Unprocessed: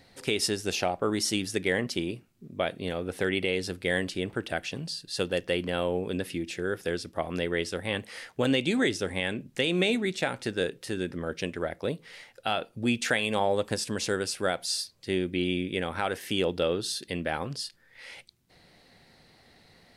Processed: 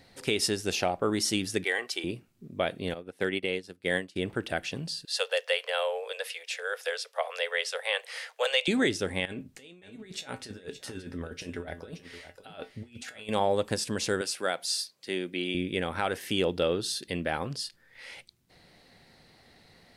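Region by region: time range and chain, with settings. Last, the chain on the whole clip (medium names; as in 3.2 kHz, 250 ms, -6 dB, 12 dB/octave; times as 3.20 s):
1.64–2.04 s: high-pass 680 Hz + comb 2.6 ms, depth 50%
2.94–4.16 s: high-pass 120 Hz + upward expansion 2.5:1, over -38 dBFS
5.05–8.68 s: steep high-pass 460 Hz 96 dB/octave + peaking EQ 3.4 kHz +4 dB 2.8 oct
9.25–13.29 s: compressor with a negative ratio -34 dBFS, ratio -0.5 + feedback comb 87 Hz, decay 0.18 s, harmonics odd, mix 70% + delay 572 ms -12.5 dB
14.21–15.55 s: high-pass 130 Hz 24 dB/octave + bass shelf 300 Hz -10.5 dB
whole clip: none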